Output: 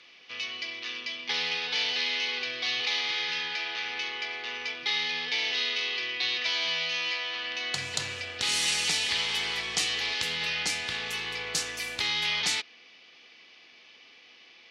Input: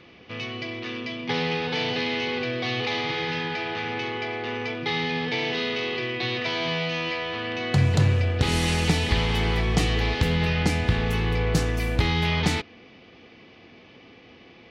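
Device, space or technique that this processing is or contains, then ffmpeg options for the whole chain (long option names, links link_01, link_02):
piezo pickup straight into a mixer: -af "lowpass=7100,aderivative,volume=9dB"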